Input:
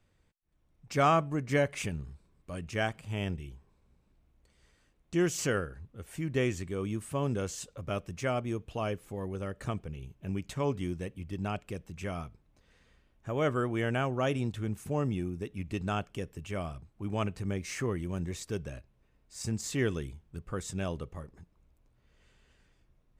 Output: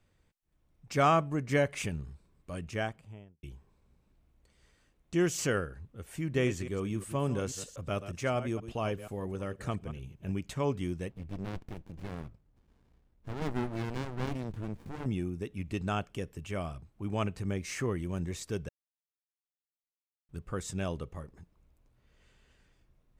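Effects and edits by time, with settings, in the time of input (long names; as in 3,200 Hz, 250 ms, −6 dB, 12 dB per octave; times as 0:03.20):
0:02.56–0:03.43: fade out and dull
0:06.20–0:10.41: delay that plays each chunk backwards 120 ms, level −12 dB
0:11.10–0:15.06: windowed peak hold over 65 samples
0:18.69–0:20.29: silence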